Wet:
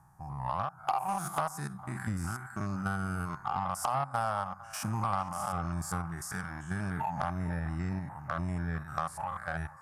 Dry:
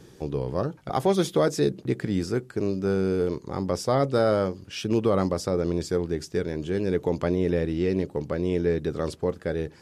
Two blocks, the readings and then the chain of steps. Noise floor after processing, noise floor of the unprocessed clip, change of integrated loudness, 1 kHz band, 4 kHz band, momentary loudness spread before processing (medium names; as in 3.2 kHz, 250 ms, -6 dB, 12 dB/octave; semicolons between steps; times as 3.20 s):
-51 dBFS, -52 dBFS, -8.5 dB, +1.5 dB, -11.0 dB, 7 LU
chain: spectrogram pixelated in time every 100 ms; spectral noise reduction 11 dB; FFT filter 140 Hz 0 dB, 460 Hz -29 dB, 780 Hz +12 dB, 1.2 kHz +9 dB, 3.4 kHz -21 dB, 9.4 kHz +9 dB; compression 5:1, threshold -37 dBFS, peak gain reduction 17.5 dB; band-passed feedback delay 453 ms, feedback 76%, band-pass 1.4 kHz, level -14.5 dB; Chebyshev shaper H 5 -10 dB, 7 -13 dB, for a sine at -22 dBFS; tape noise reduction on one side only decoder only; trim +4.5 dB